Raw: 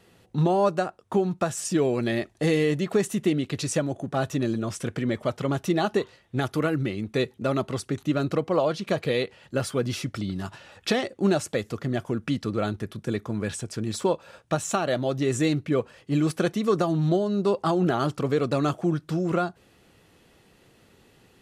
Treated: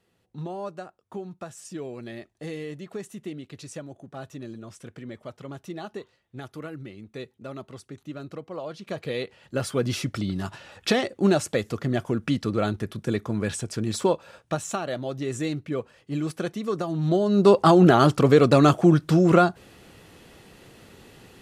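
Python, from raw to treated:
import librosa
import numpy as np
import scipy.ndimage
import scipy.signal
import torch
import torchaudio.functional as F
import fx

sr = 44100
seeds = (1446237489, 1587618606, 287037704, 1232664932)

y = fx.gain(x, sr, db=fx.line((8.57, -12.5), (9.02, -6.0), (9.9, 2.0), (14.05, 2.0), (14.9, -5.0), (16.87, -5.0), (17.48, 8.0)))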